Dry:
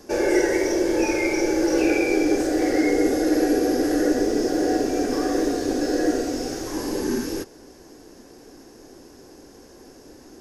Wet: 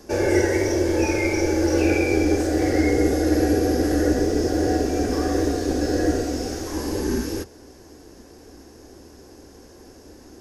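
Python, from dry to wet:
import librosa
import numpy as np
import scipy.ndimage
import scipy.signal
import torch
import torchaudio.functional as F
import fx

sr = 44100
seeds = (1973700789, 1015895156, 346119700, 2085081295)

y = fx.octave_divider(x, sr, octaves=2, level_db=-3.0)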